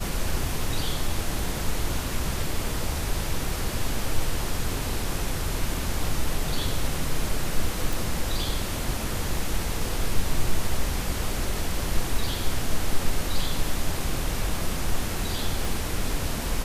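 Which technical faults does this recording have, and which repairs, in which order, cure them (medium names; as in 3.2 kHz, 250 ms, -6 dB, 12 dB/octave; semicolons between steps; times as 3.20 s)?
7.93 s: pop
15.65 s: pop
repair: de-click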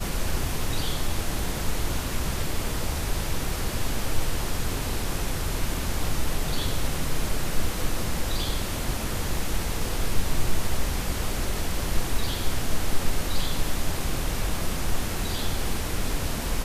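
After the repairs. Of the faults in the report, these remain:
15.65 s: pop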